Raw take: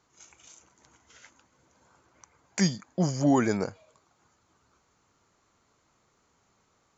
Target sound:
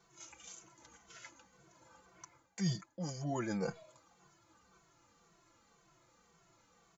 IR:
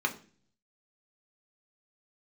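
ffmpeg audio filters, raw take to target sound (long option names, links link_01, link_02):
-filter_complex "[0:a]aecho=1:1:5.9:0.52,areverse,acompressor=threshold=-34dB:ratio=8,areverse,asplit=2[link_01][link_02];[link_02]adelay=2.2,afreqshift=-1.9[link_03];[link_01][link_03]amix=inputs=2:normalize=1,volume=2.5dB"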